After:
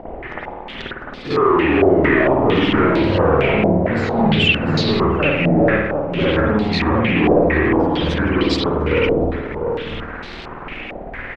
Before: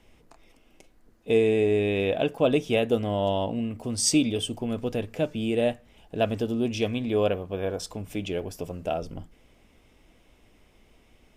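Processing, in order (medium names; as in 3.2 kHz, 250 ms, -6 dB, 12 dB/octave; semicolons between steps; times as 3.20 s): sawtooth pitch modulation -7.5 st, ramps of 430 ms; bass shelf 160 Hz -5 dB; de-hum 63.31 Hz, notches 4; in parallel at -1.5 dB: upward compressor, threshold -28 dBFS; on the sum: waveshaping leveller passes 5; compression 2:1, threshold -16 dBFS, peak gain reduction 4.5 dB; on a send: delay 699 ms -6.5 dB; on the sum: spring tank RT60 1 s, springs 52 ms, chirp 55 ms, DRR -8.5 dB; step-sequenced low-pass 4.4 Hz 670–4300 Hz; trim -12 dB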